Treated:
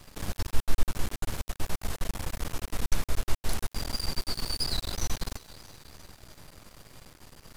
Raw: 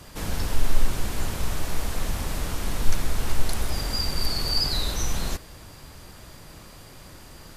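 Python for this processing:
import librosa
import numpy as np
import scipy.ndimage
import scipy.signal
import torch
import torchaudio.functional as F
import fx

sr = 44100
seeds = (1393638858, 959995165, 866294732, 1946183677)

y = fx.echo_thinned(x, sr, ms=327, feedback_pct=56, hz=360.0, wet_db=-16)
y = np.maximum(y, 0.0)
y = y * 10.0 ** (-2.5 / 20.0)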